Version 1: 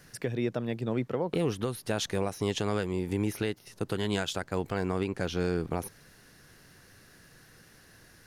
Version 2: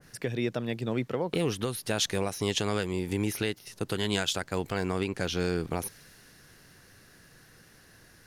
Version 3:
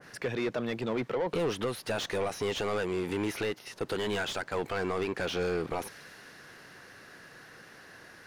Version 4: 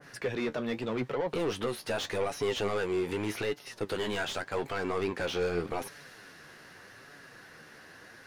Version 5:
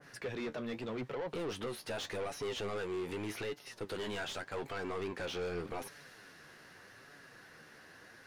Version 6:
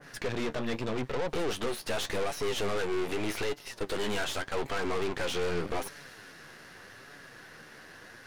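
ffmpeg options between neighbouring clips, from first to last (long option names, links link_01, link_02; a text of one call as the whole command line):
ffmpeg -i in.wav -af "adynamicequalizer=threshold=0.00398:dfrequency=1800:dqfactor=0.7:tfrequency=1800:tqfactor=0.7:attack=5:release=100:ratio=0.375:range=3:mode=boostabove:tftype=highshelf" out.wav
ffmpeg -i in.wav -filter_complex "[0:a]asplit=2[link_01][link_02];[link_02]highpass=frequency=720:poles=1,volume=25dB,asoftclip=type=tanh:threshold=-13.5dB[link_03];[link_01][link_03]amix=inputs=2:normalize=0,lowpass=frequency=1500:poles=1,volume=-6dB,volume=-7dB" out.wav
ffmpeg -i in.wav -af "flanger=delay=6.9:depth=6.7:regen=46:speed=0.84:shape=sinusoidal,volume=3.5dB" out.wav
ffmpeg -i in.wav -af "asoftclip=type=tanh:threshold=-28.5dB,volume=-4.5dB" out.wav
ffmpeg -i in.wav -af "aeval=exprs='0.0224*(cos(1*acos(clip(val(0)/0.0224,-1,1)))-cos(1*PI/2))+0.00631*(cos(4*acos(clip(val(0)/0.0224,-1,1)))-cos(4*PI/2))':channel_layout=same,volume=6dB" out.wav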